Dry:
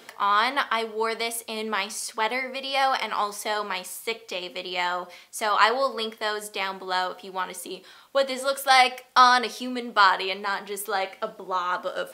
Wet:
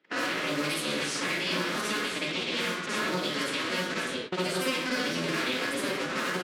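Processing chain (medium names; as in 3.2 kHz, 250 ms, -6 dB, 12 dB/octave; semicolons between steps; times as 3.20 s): cycle switcher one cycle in 3, inverted; high-pass 170 Hz 24 dB/octave; treble shelf 12 kHz -12 dB; delay 1160 ms -20 dB; waveshaping leveller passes 1; peak limiter -14 dBFS, peak gain reduction 11 dB; plate-style reverb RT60 1.2 s, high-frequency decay 0.8×, pre-delay 90 ms, DRR -9 dB; level-controlled noise filter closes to 2.2 kHz, open at -13 dBFS; peaking EQ 820 Hz -13.5 dB 1 oct; compression 3:1, threshold -28 dBFS, peak gain reduction 11.5 dB; time stretch by phase-locked vocoder 0.53×; gate -36 dBFS, range -14 dB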